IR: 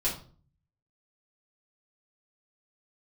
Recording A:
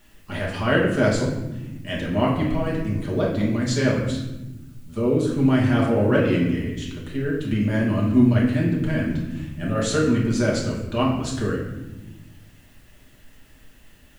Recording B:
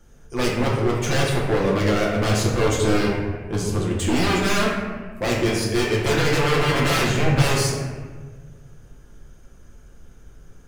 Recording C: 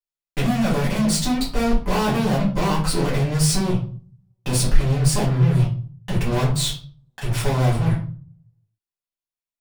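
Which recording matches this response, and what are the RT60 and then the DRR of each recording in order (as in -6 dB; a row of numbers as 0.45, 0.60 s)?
C; not exponential, 1.5 s, 0.45 s; -4.5, -4.5, -8.0 dB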